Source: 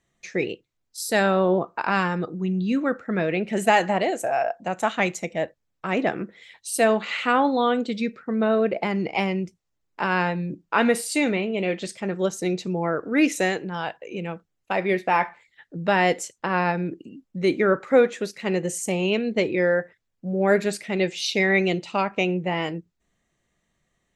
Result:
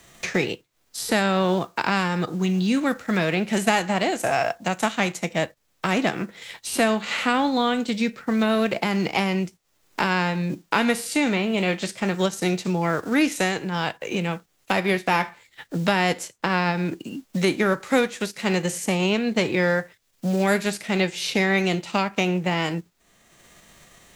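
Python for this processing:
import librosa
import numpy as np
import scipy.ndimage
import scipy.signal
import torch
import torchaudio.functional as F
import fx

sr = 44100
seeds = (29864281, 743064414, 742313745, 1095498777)

y = fx.envelope_flatten(x, sr, power=0.6)
y = fx.band_squash(y, sr, depth_pct=70)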